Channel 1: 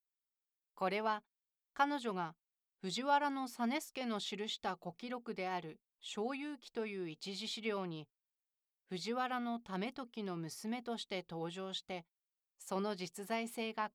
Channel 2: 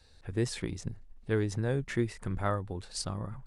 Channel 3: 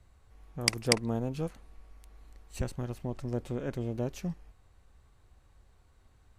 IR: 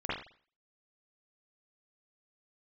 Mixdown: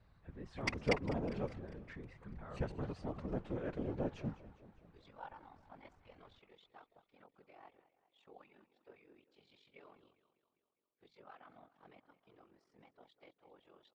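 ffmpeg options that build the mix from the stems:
-filter_complex "[0:a]highpass=350,tremolo=f=45:d=0.857,adelay=2100,volume=-9dB,asplit=2[a][b];[b]volume=-16dB[c];[1:a]alimiter=level_in=4dB:limit=-24dB:level=0:latency=1:release=117,volume=-4dB,volume=-6dB,asplit=2[d][e];[2:a]lowshelf=f=340:g=-5,acrusher=bits=7:mode=log:mix=0:aa=0.000001,volume=3dB,asplit=2[f][g];[g]volume=-16.5dB[h];[e]apad=whole_len=707613[i];[a][i]sidechaincompress=threshold=-58dB:ratio=8:attack=16:release=976[j];[c][h]amix=inputs=2:normalize=0,aecho=0:1:201|402|603|804|1005|1206|1407|1608|1809:1|0.57|0.325|0.185|0.106|0.0602|0.0343|0.0195|0.0111[k];[j][d][f][k]amix=inputs=4:normalize=0,lowpass=2.5k,afftfilt=real='hypot(re,im)*cos(2*PI*random(0))':imag='hypot(re,im)*sin(2*PI*random(1))':win_size=512:overlap=0.75"

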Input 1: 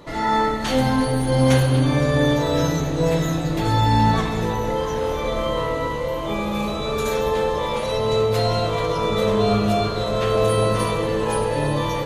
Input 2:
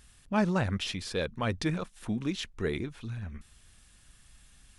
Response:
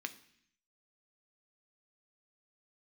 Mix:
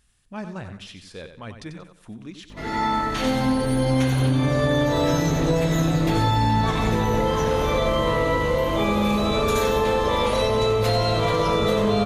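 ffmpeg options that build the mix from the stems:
-filter_complex "[0:a]aeval=exprs='val(0)+0.0282*(sin(2*PI*50*n/s)+sin(2*PI*2*50*n/s)/2+sin(2*PI*3*50*n/s)/3+sin(2*PI*4*50*n/s)/4+sin(2*PI*5*50*n/s)/5)':c=same,adelay=2500,volume=3dB,asplit=3[a][b][c];[b]volume=-8.5dB[d];[c]volume=-9dB[e];[1:a]volume=-7dB,asplit=3[f][g][h];[g]volume=-9dB[i];[h]apad=whole_len=642007[j];[a][j]sidechaincompress=threshold=-55dB:ratio=4:attack=16:release=1390[k];[2:a]atrim=start_sample=2205[l];[d][l]afir=irnorm=-1:irlink=0[m];[e][i]amix=inputs=2:normalize=0,aecho=0:1:92|184|276|368|460:1|0.32|0.102|0.0328|0.0105[n];[k][f][m][n]amix=inputs=4:normalize=0,acompressor=threshold=-17dB:ratio=6"

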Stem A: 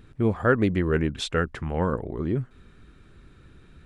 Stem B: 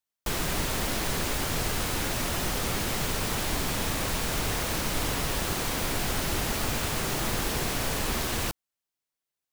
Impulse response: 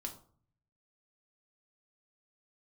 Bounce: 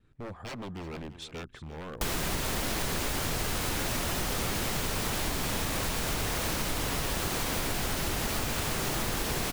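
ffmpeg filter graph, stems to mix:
-filter_complex "[0:a]aeval=exprs='0.0794*(abs(mod(val(0)/0.0794+3,4)-2)-1)':c=same,agate=range=-33dB:threshold=-48dB:ratio=3:detection=peak,volume=-12dB,asplit=2[a][b];[b]volume=-13.5dB[c];[1:a]adelay=1750,volume=2.5dB[d];[c]aecho=0:1:343:1[e];[a][d][e]amix=inputs=3:normalize=0,acompressor=threshold=-27dB:ratio=6"

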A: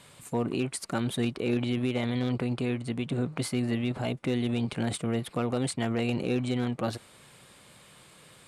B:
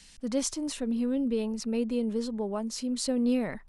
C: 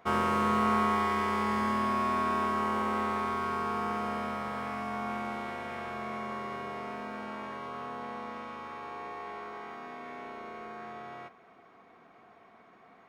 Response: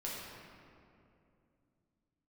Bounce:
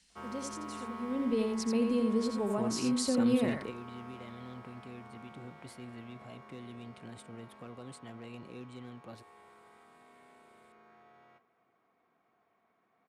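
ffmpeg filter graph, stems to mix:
-filter_complex "[0:a]adelay=2250,volume=-8.5dB[a];[1:a]volume=-1dB,afade=t=in:st=0.99:d=0.4:silence=0.251189,asplit=3[b][c][d];[c]volume=-5.5dB[e];[2:a]adelay=100,volume=-17.5dB,asplit=2[f][g];[g]volume=-17dB[h];[d]apad=whole_len=472813[i];[a][i]sidechaingate=range=-10dB:threshold=-52dB:ratio=16:detection=peak[j];[3:a]atrim=start_sample=2205[k];[h][k]afir=irnorm=-1:irlink=0[l];[e]aecho=0:1:85:1[m];[j][b][f][l][m]amix=inputs=5:normalize=0,highpass=46,acrossover=split=410[n][o];[o]acompressor=threshold=-31dB:ratio=6[p];[n][p]amix=inputs=2:normalize=0"

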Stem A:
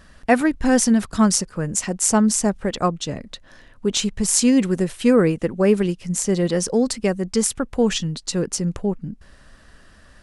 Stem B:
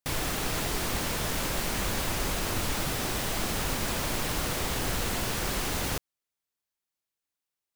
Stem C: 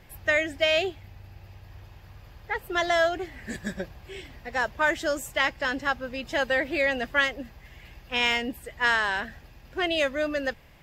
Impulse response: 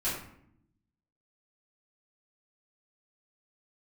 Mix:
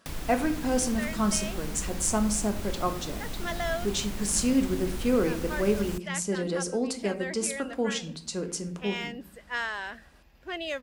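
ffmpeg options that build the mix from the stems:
-filter_complex "[0:a]highpass=180,bandreject=f=1.8k:w=7.7,volume=-10dB,asplit=3[a][b][c];[b]volume=-12dB[d];[1:a]acrossover=split=230[e][f];[f]acompressor=threshold=-40dB:ratio=10[g];[e][g]amix=inputs=2:normalize=0,volume=0dB[h];[2:a]adelay=700,volume=-8.5dB[i];[c]apad=whole_len=508271[j];[i][j]sidechaincompress=threshold=-28dB:ratio=8:attack=8.3:release=1030[k];[3:a]atrim=start_sample=2205[l];[d][l]afir=irnorm=-1:irlink=0[m];[a][h][k][m]amix=inputs=4:normalize=0,equalizer=f=110:w=3.4:g=-13"

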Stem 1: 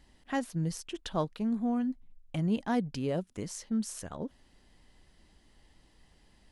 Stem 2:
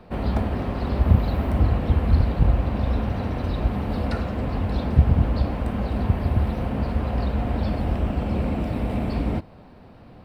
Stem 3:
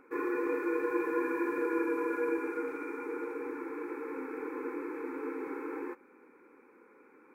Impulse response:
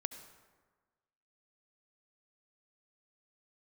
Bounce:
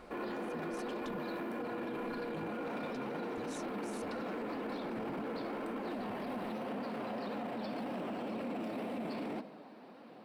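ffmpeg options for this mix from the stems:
-filter_complex "[0:a]acompressor=threshold=-38dB:ratio=6,volume=-1.5dB[a];[1:a]highpass=f=230:w=0.5412,highpass=f=230:w=1.3066,flanger=delay=3.6:depth=5.8:regen=52:speed=1.9:shape=sinusoidal,volume=-2.5dB,asplit=2[b][c];[c]volume=-7dB[d];[2:a]acompressor=threshold=-32dB:ratio=6,volume=1.5dB[e];[3:a]atrim=start_sample=2205[f];[d][f]afir=irnorm=-1:irlink=0[g];[a][b][e][g]amix=inputs=4:normalize=0,alimiter=level_in=8.5dB:limit=-24dB:level=0:latency=1:release=11,volume=-8.5dB"

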